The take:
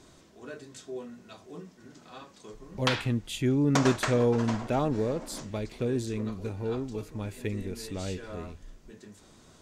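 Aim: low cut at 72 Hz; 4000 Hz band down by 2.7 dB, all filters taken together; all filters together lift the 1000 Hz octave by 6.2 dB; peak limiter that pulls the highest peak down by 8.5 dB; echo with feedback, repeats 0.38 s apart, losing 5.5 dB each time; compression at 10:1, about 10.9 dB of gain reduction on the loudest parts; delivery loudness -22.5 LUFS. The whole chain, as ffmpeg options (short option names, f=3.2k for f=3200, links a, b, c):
-af "highpass=72,equalizer=f=1k:t=o:g=8,equalizer=f=4k:t=o:g=-4,acompressor=threshold=-28dB:ratio=10,alimiter=level_in=2.5dB:limit=-24dB:level=0:latency=1,volume=-2.5dB,aecho=1:1:380|760|1140|1520|1900|2280|2660:0.531|0.281|0.149|0.079|0.0419|0.0222|0.0118,volume=14.5dB"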